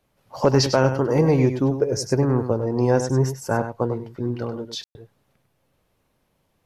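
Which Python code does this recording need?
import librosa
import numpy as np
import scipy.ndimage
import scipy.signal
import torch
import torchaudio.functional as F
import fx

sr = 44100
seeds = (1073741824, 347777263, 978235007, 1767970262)

y = fx.fix_ambience(x, sr, seeds[0], print_start_s=6.04, print_end_s=6.54, start_s=4.84, end_s=4.95)
y = fx.fix_echo_inverse(y, sr, delay_ms=99, level_db=-9.5)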